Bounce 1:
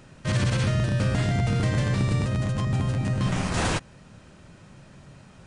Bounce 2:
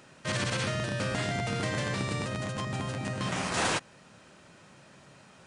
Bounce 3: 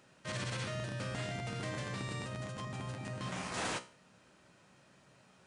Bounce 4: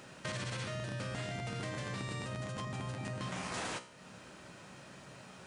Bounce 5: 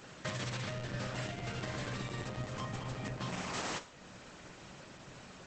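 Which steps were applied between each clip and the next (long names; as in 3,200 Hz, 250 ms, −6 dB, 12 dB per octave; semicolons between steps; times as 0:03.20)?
high-pass filter 430 Hz 6 dB per octave
tuned comb filter 62 Hz, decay 0.39 s, harmonics all, mix 60%; level −4 dB
downward compressor 4 to 1, threshold −50 dBFS, peak gain reduction 14 dB; level +11 dB
level +1.5 dB; Opus 10 kbit/s 48,000 Hz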